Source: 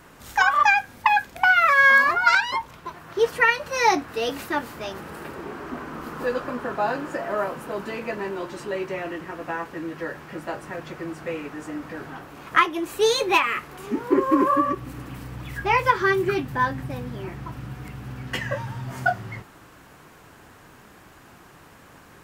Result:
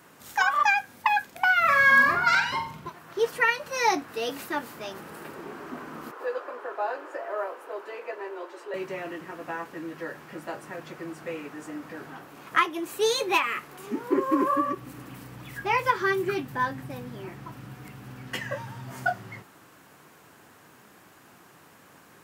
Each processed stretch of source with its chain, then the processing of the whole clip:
1.6–2.89 tone controls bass +14 dB, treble -1 dB + flutter echo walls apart 7.7 m, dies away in 0.44 s
6.11–8.74 steep high-pass 370 Hz + high shelf 3300 Hz -12 dB
whole clip: HPF 130 Hz 12 dB/oct; high shelf 7600 Hz +5.5 dB; gain -4.5 dB

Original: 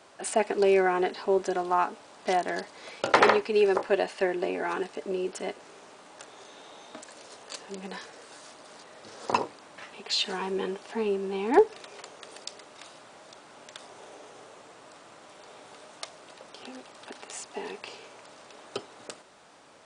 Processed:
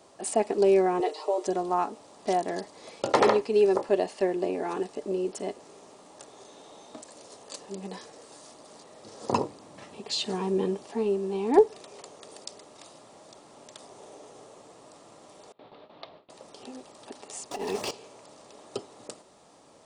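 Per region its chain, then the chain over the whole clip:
1–1.47 steep high-pass 340 Hz 48 dB/oct + notch 1600 Hz, Q 5.7 + comb 6.5 ms, depth 88%
9.21–10.85 HPF 63 Hz + low shelf 210 Hz +10 dB
15.52–16.3 steep low-pass 4100 Hz 48 dB/oct + gate with hold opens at -40 dBFS, closes at -45 dBFS
17.51–17.91 bell 5600 Hz +4.5 dB 0.24 oct + negative-ratio compressor -40 dBFS, ratio -0.5 + sample leveller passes 3
whole clip: bell 2100 Hz -10 dB 2.1 oct; notch 1500 Hz, Q 9.3; gain +2.5 dB

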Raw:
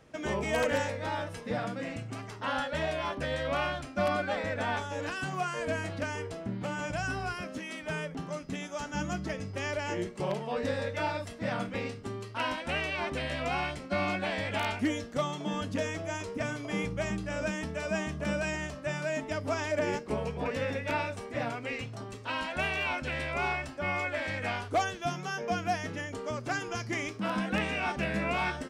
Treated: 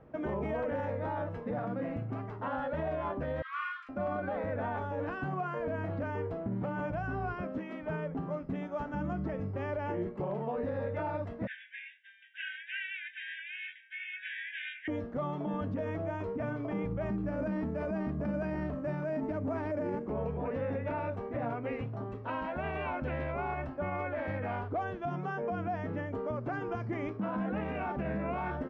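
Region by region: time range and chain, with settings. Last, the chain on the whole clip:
3.42–3.89 steep high-pass 1100 Hz 96 dB/oct + doubler 40 ms -4 dB
11.47–14.88 brick-wall FIR band-pass 1500–3800 Hz + tilt +4.5 dB/oct + doubler 21 ms -8 dB
17.09–20.1 bell 250 Hz +6.5 dB 1 oct + careless resampling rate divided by 6×, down none, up hold
whole clip: LPF 1100 Hz 12 dB/oct; limiter -29.5 dBFS; gain +3 dB

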